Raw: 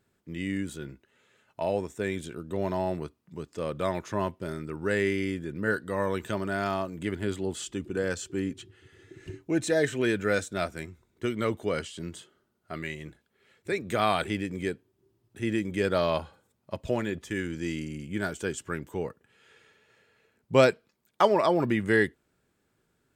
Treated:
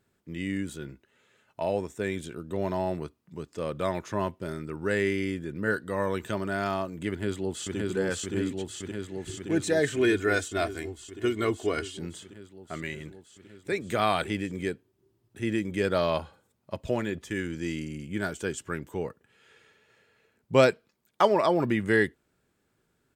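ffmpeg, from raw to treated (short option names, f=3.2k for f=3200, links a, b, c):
-filter_complex "[0:a]asplit=2[a][b];[b]afade=t=in:st=7.09:d=0.01,afade=t=out:st=7.77:d=0.01,aecho=0:1:570|1140|1710|2280|2850|3420|3990|4560|5130|5700|6270|6840:0.841395|0.673116|0.538493|0.430794|0.344635|0.275708|0.220567|0.176453|0.141163|0.11293|0.0903441|0.0722753[c];[a][c]amix=inputs=2:normalize=0,asettb=1/sr,asplit=3[d][e][f];[d]atrim=end=9.964[g];[e]atrim=start=9.96:end=11.97,asetpts=PTS-STARTPTS,afade=t=in:d=0.004:c=qsin,afade=t=out:st=2.006:d=0.004:c=qsin,aecho=1:1:2.8:0.65,atrim=end_sample=88641[h];[f]atrim=start=11.966[i];[g][h]acrossfade=d=0.004:c1=hsin:c2=qsin[j];[j][i]acrossfade=d=0.004:c1=qsin:c2=hsin"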